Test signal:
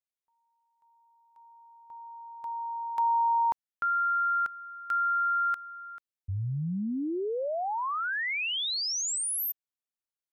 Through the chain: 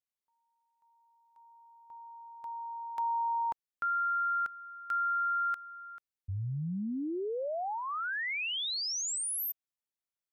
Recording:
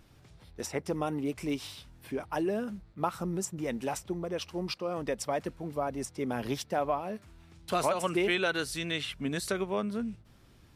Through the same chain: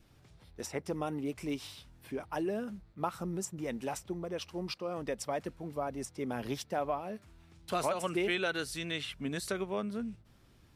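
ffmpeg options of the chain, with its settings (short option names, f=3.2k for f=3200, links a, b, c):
-af "adynamicequalizer=threshold=0.00355:dfrequency=1000:dqfactor=5.5:tfrequency=1000:tqfactor=5.5:attack=5:release=100:ratio=0.375:range=2.5:mode=cutabove:tftype=bell,volume=-3.5dB"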